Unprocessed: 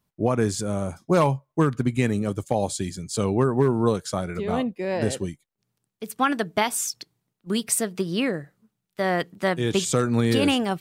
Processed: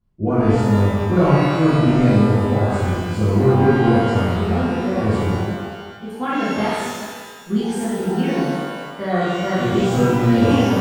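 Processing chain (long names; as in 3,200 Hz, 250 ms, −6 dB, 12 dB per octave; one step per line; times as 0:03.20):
RIAA equalisation playback
reverb with rising layers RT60 1.5 s, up +12 semitones, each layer −8 dB, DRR −12 dB
level −11 dB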